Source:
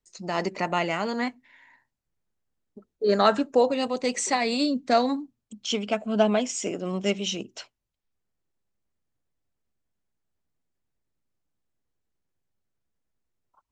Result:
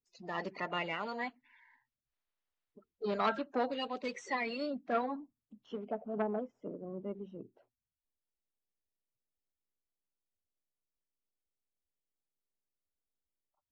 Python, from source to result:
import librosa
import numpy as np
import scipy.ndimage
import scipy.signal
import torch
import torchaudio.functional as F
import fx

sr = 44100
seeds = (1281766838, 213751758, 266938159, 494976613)

y = fx.spec_quant(x, sr, step_db=30)
y = scipy.signal.sosfilt(scipy.signal.butter(2, 6300.0, 'lowpass', fs=sr, output='sos'), y)
y = fx.low_shelf(y, sr, hz=420.0, db=-4.5)
y = fx.filter_sweep_lowpass(y, sr, from_hz=3900.0, to_hz=440.0, start_s=4.05, end_s=6.78, q=0.91)
y = fx.transformer_sat(y, sr, knee_hz=1100.0)
y = F.gain(torch.from_numpy(y), -8.5).numpy()